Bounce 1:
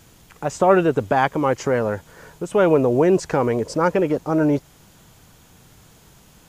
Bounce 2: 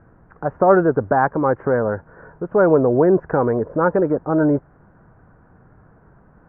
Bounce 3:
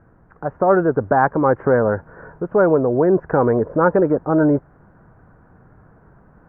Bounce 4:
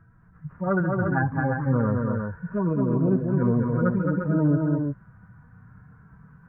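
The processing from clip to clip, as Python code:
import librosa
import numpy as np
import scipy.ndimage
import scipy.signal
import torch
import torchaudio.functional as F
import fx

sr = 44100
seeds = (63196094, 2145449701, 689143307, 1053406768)

y1 = scipy.signal.sosfilt(scipy.signal.ellip(4, 1.0, 60, 1600.0, 'lowpass', fs=sr, output='sos'), x)
y1 = fx.notch(y1, sr, hz=870.0, q=27.0)
y1 = F.gain(torch.from_numpy(y1), 2.0).numpy()
y2 = fx.rider(y1, sr, range_db=10, speed_s=0.5)
y2 = F.gain(torch.from_numpy(y2), 1.0).numpy()
y3 = fx.hpss_only(y2, sr, part='harmonic')
y3 = fx.band_shelf(y3, sr, hz=520.0, db=-12.0, octaves=1.7)
y3 = fx.echo_multitap(y3, sr, ms=(67, 217, 277, 349), db=(-20.0, -3.5, -18.0, -5.5))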